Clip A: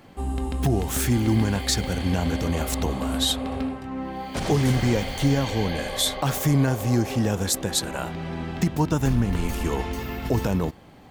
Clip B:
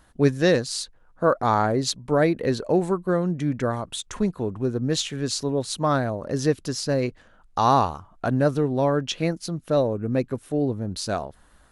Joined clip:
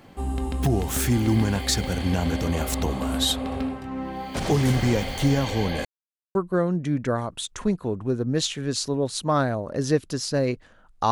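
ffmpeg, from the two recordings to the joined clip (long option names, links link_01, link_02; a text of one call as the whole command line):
ffmpeg -i cue0.wav -i cue1.wav -filter_complex "[0:a]apad=whole_dur=11.11,atrim=end=11.11,asplit=2[link_01][link_02];[link_01]atrim=end=5.85,asetpts=PTS-STARTPTS,afade=type=out:start_time=5.846:duration=0.004:curve=hsin[link_03];[link_02]atrim=start=5.85:end=6.35,asetpts=PTS-STARTPTS,volume=0[link_04];[1:a]atrim=start=2.9:end=7.66,asetpts=PTS-STARTPTS,afade=type=in:duration=0.004:curve=hsin[link_05];[link_03][link_04][link_05]concat=n=3:v=0:a=1" out.wav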